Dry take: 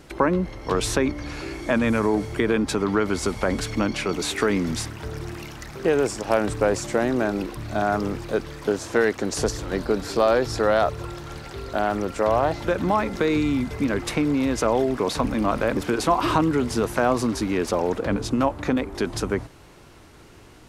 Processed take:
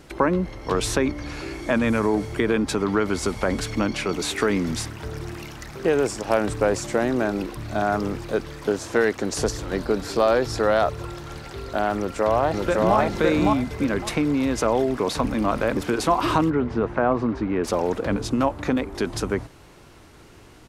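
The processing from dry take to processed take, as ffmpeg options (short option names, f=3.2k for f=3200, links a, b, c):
-filter_complex "[0:a]asplit=2[a][b];[b]afade=t=in:st=11.97:d=0.01,afade=t=out:st=12.97:d=0.01,aecho=0:1:560|1120|1680:0.891251|0.17825|0.03565[c];[a][c]amix=inputs=2:normalize=0,asettb=1/sr,asplit=3[d][e][f];[d]atrim=end=16.504[g];[e]atrim=start=16.5:end=17.64,asetpts=PTS-STARTPTS,afade=t=in:d=0.004:c=qsin,afade=t=out:st=1.136:d=0.004:c=qsin,lowpass=1.8k[h];[f]atrim=start=17.636[i];[g][h]acrossfade=d=0.004:c1=hsin:c2=qsin[j];[j][i]acrossfade=d=0.004:c1=qsin:c2=hsin"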